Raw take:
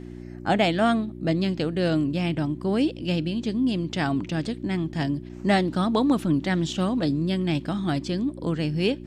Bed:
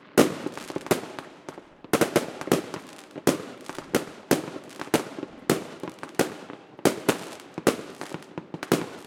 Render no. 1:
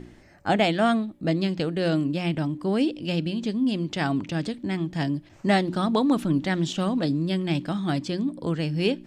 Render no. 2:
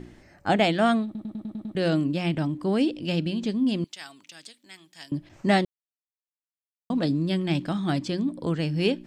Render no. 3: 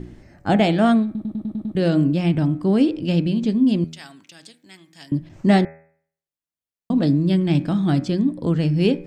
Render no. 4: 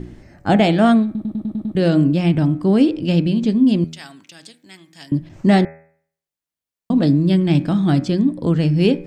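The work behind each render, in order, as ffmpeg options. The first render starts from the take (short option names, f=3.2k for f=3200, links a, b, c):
-af "bandreject=f=60:t=h:w=4,bandreject=f=120:t=h:w=4,bandreject=f=180:t=h:w=4,bandreject=f=240:t=h:w=4,bandreject=f=300:t=h:w=4,bandreject=f=360:t=h:w=4"
-filter_complex "[0:a]asettb=1/sr,asplit=3[a][b][c];[a]atrim=end=3.844[d];[b]atrim=start=3.84:end=5.12,asetpts=PTS-STARTPTS,afade=t=in:d=0.004:c=qsin,afade=t=out:st=1.276:d=0.004:c=qsin,aderivative[e];[c]atrim=start=5.116[f];[d][e]acrossfade=d=0.004:c1=hsin:c2=qsin[g];[g][f]acrossfade=d=0.004:c1=qsin:c2=hsin,asplit=10[h][i][j][k][l][m][n][o][p][q];[h]atrim=end=1.152[r];[i]atrim=start=1.048:end=1.152[s];[j]atrim=start=1.048:end=1.152[t];[k]atrim=start=1.048:end=1.152[u];[l]atrim=start=1.048:end=1.152[v];[m]atrim=start=1.048:end=1.152[w];[n]atrim=start=1.048:end=1.152[x];[o]atrim=start=1.748:end=5.65,asetpts=PTS-STARTPTS,afade=t=out:st=3.898:d=0.004:c=hsin[y];[p]atrim=start=5.65:end=6.9,asetpts=PTS-STARTPTS,volume=0[z];[q]atrim=start=6.9,asetpts=PTS-STARTPTS,afade=t=in:d=0.004:c=hsin[aa];[r][s]acrossfade=d=0.004:c1=hsin:c2=hsin[ab];[ab][t]acrossfade=d=0.004:c1=hsin:c2=hsin[ac];[ac][u]acrossfade=d=0.004:c1=hsin:c2=hsin[ad];[ad][v]acrossfade=d=0.004:c1=hsin:c2=hsin[ae];[ae][w]acrossfade=d=0.004:c1=hsin:c2=hsin[af];[af][x]acrossfade=d=0.004:c1=hsin:c2=hsin[ag];[y][z][aa]concat=n=3:v=0:a=1[ah];[ag][ah]acrossfade=d=0.004:c1=hsin:c2=hsin"
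-af "lowshelf=f=410:g=10,bandreject=f=80.5:t=h:w=4,bandreject=f=161:t=h:w=4,bandreject=f=241.5:t=h:w=4,bandreject=f=322:t=h:w=4,bandreject=f=402.5:t=h:w=4,bandreject=f=483:t=h:w=4,bandreject=f=563.5:t=h:w=4,bandreject=f=644:t=h:w=4,bandreject=f=724.5:t=h:w=4,bandreject=f=805:t=h:w=4,bandreject=f=885.5:t=h:w=4,bandreject=f=966:t=h:w=4,bandreject=f=1.0465k:t=h:w=4,bandreject=f=1.127k:t=h:w=4,bandreject=f=1.2075k:t=h:w=4,bandreject=f=1.288k:t=h:w=4,bandreject=f=1.3685k:t=h:w=4,bandreject=f=1.449k:t=h:w=4,bandreject=f=1.5295k:t=h:w=4,bandreject=f=1.61k:t=h:w=4,bandreject=f=1.6905k:t=h:w=4,bandreject=f=1.771k:t=h:w=4,bandreject=f=1.8515k:t=h:w=4,bandreject=f=1.932k:t=h:w=4,bandreject=f=2.0125k:t=h:w=4,bandreject=f=2.093k:t=h:w=4,bandreject=f=2.1735k:t=h:w=4,bandreject=f=2.254k:t=h:w=4,bandreject=f=2.3345k:t=h:w=4,bandreject=f=2.415k:t=h:w=4,bandreject=f=2.4955k:t=h:w=4,bandreject=f=2.576k:t=h:w=4"
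-af "volume=3dB,alimiter=limit=-3dB:level=0:latency=1"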